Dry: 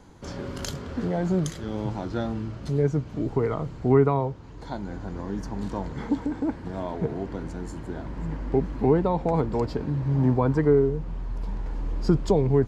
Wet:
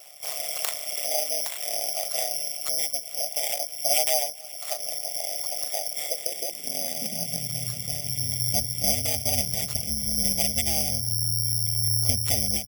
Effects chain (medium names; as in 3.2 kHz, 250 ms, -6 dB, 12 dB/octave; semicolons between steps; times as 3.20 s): comb filter that takes the minimum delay 1.4 ms; peaking EQ 1.4 kHz +10 dB 0.47 oct; in parallel at +3 dB: compression 10:1, threshold -31 dBFS, peak gain reduction 16.5 dB; on the sum: one-sided clip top -21.5 dBFS, bottom -9 dBFS; graphic EQ 250/500/1000/2000/4000/8000 Hz -11/-5/+6/+11/+5/-4 dB; ring modulator 73 Hz; elliptic band-stop 700–2200 Hz, stop band 40 dB; on a send: delay 293 ms -23.5 dB; on the sum: spectral gate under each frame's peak -30 dB strong; careless resampling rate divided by 8×, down none, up zero stuff; high-pass sweep 650 Hz -> 90 Hz, 5.85–7.94 s; endings held to a fixed fall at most 190 dB/s; trim -6.5 dB